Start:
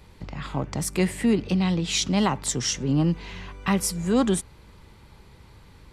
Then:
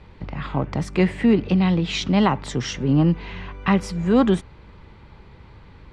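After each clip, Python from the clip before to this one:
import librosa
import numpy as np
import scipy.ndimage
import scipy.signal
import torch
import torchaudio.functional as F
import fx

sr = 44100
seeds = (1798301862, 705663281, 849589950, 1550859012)

y = scipy.signal.sosfilt(scipy.signal.butter(2, 3000.0, 'lowpass', fs=sr, output='sos'), x)
y = F.gain(torch.from_numpy(y), 4.5).numpy()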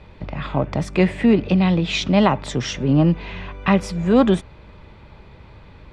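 y = fx.small_body(x, sr, hz=(610.0, 2500.0, 3500.0), ring_ms=25, db=7)
y = F.gain(torch.from_numpy(y), 1.5).numpy()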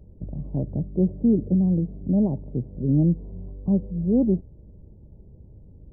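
y = scipy.ndimage.gaussian_filter1d(x, 19.0, mode='constant')
y = F.gain(torch.from_numpy(y), -2.0).numpy()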